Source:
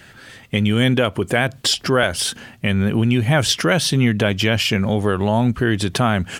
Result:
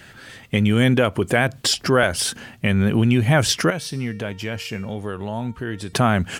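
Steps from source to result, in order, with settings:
dynamic equaliser 3,300 Hz, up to −5 dB, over −33 dBFS, Q 2.6
0:03.70–0:05.93: tuned comb filter 460 Hz, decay 0.69 s, mix 70%

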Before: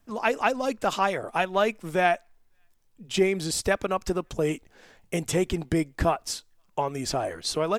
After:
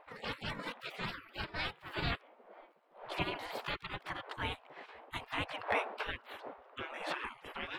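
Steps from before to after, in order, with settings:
pitch glide at a constant tempo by +7 semitones ending unshifted
wind on the microphone 140 Hz −33 dBFS
dynamic equaliser 120 Hz, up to −5 dB, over −44 dBFS, Q 3.6
gate on every frequency bin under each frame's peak −25 dB weak
high-frequency loss of the air 450 metres
level +11 dB

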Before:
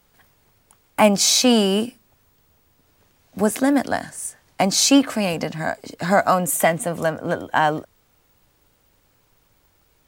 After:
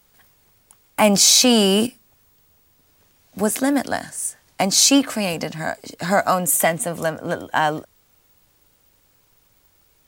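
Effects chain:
high-shelf EQ 3,400 Hz +6.5 dB
0:01.05–0:01.87: envelope flattener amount 50%
level −1.5 dB

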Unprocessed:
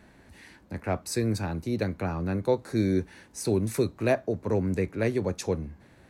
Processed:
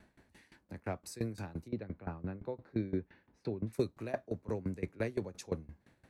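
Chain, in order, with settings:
0:01.68–0:03.73: high-frequency loss of the air 330 metres
tremolo with a ramp in dB decaying 5.8 Hz, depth 20 dB
level −4.5 dB

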